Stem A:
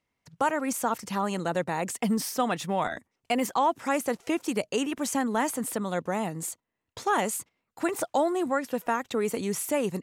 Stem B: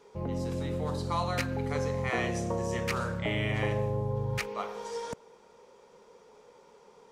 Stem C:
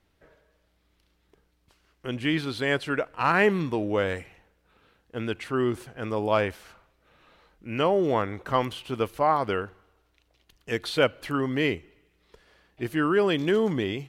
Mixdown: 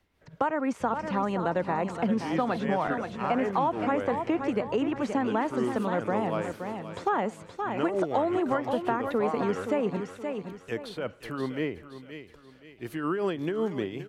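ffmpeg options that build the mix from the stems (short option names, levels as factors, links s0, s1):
-filter_complex "[0:a]lowpass=3200,volume=1.41,asplit=2[s0][s1];[s1]volume=0.335[s2];[1:a]alimiter=level_in=1.88:limit=0.0631:level=0:latency=1,volume=0.531,adelay=650,volume=0.422[s3];[2:a]alimiter=limit=0.158:level=0:latency=1,tremolo=f=5.5:d=0.56,volume=0.841,asplit=2[s4][s5];[s5]volume=0.211[s6];[s2][s6]amix=inputs=2:normalize=0,aecho=0:1:522|1044|1566|2088|2610:1|0.35|0.122|0.0429|0.015[s7];[s0][s3][s4][s7]amix=inputs=4:normalize=0,acrossover=split=150|1700[s8][s9][s10];[s8]acompressor=threshold=0.00501:ratio=4[s11];[s9]acompressor=threshold=0.0708:ratio=4[s12];[s10]acompressor=threshold=0.00501:ratio=4[s13];[s11][s12][s13]amix=inputs=3:normalize=0"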